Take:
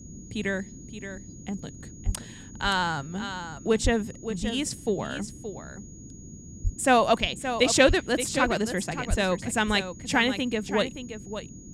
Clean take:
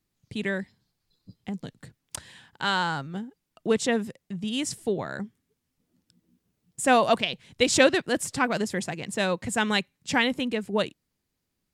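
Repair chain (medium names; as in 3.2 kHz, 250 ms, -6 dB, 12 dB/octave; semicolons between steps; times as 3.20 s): band-stop 6.7 kHz, Q 30; de-plosive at 2.05/3.83/6.63/7.87/9.09 s; noise print and reduce 30 dB; inverse comb 573 ms -10 dB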